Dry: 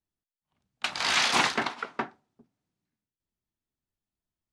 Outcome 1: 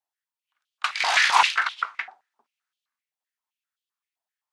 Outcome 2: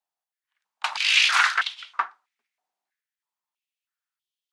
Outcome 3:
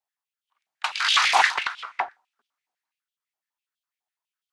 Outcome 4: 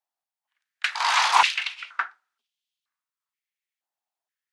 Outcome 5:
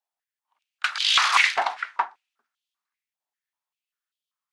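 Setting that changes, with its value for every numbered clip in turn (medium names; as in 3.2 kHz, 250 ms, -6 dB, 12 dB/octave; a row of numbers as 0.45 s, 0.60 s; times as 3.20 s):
step-sequenced high-pass, rate: 7.7 Hz, 3.1 Hz, 12 Hz, 2.1 Hz, 5.1 Hz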